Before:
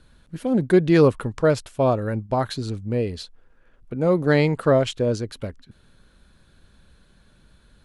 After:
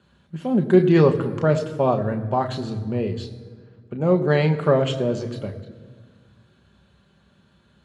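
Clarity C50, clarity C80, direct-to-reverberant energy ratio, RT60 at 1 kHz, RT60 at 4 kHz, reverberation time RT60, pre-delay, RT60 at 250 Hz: 12.0 dB, 13.0 dB, 4.5 dB, 1.7 s, 1.2 s, 1.7 s, 3 ms, 2.2 s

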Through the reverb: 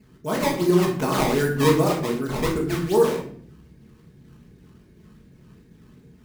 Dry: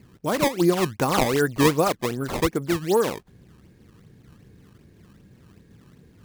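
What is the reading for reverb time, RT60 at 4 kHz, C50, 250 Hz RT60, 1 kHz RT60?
0.55 s, 0.40 s, 5.5 dB, 1.1 s, 0.50 s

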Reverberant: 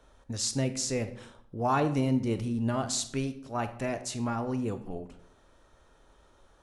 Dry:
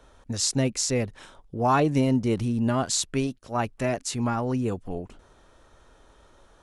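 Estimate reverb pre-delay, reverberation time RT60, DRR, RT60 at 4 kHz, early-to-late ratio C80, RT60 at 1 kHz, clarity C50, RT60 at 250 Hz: 25 ms, 0.65 s, 9.5 dB, 0.45 s, 16.0 dB, 0.60 s, 12.5 dB, 0.80 s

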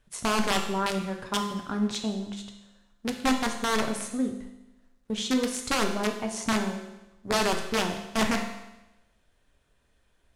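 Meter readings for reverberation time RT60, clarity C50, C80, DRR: 0.95 s, 7.0 dB, 9.5 dB, 3.0 dB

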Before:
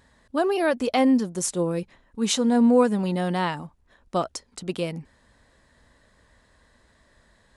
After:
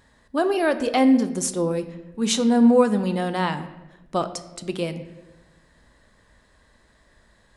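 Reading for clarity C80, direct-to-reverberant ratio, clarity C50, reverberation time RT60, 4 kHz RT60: 14.0 dB, 9.5 dB, 12.5 dB, 1.1 s, 0.75 s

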